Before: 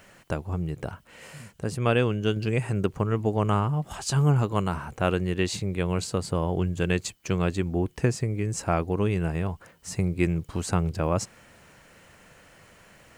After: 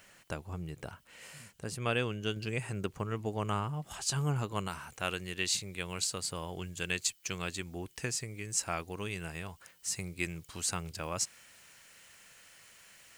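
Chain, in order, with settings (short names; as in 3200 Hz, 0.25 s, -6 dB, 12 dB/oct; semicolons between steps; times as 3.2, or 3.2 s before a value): tilt shelf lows -5 dB, about 1500 Hz, from 4.67 s lows -10 dB; gain -6 dB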